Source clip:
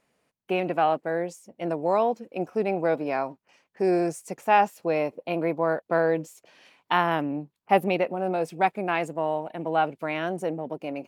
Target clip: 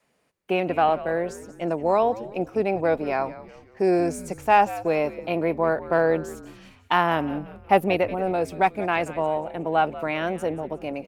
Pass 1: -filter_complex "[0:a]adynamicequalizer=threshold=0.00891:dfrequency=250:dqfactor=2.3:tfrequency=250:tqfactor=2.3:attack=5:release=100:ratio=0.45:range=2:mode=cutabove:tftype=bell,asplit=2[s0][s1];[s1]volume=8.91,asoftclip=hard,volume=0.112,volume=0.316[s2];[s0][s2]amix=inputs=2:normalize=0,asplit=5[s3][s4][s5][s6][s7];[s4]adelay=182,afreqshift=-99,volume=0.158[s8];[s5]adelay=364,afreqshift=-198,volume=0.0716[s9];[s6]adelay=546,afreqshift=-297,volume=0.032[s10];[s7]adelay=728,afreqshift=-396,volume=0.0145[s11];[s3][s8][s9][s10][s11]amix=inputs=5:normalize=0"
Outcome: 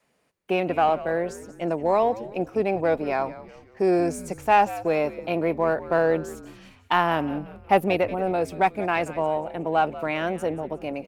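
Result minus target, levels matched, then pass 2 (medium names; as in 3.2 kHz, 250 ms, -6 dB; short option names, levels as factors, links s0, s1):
overload inside the chain: distortion +11 dB
-filter_complex "[0:a]adynamicequalizer=threshold=0.00891:dfrequency=250:dqfactor=2.3:tfrequency=250:tqfactor=2.3:attack=5:release=100:ratio=0.45:range=2:mode=cutabove:tftype=bell,asplit=2[s0][s1];[s1]volume=4.22,asoftclip=hard,volume=0.237,volume=0.316[s2];[s0][s2]amix=inputs=2:normalize=0,asplit=5[s3][s4][s5][s6][s7];[s4]adelay=182,afreqshift=-99,volume=0.158[s8];[s5]adelay=364,afreqshift=-198,volume=0.0716[s9];[s6]adelay=546,afreqshift=-297,volume=0.032[s10];[s7]adelay=728,afreqshift=-396,volume=0.0145[s11];[s3][s8][s9][s10][s11]amix=inputs=5:normalize=0"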